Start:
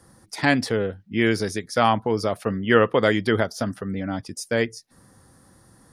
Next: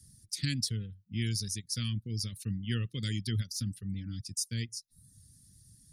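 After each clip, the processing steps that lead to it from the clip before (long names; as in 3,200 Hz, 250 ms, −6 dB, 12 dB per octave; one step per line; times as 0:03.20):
reverb reduction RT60 0.66 s
Chebyshev band-stop filter 120–4,900 Hz, order 2
parametric band 10,000 Hz +2 dB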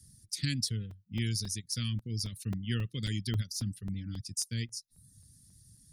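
regular buffer underruns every 0.27 s, samples 128, zero, from 0:00.91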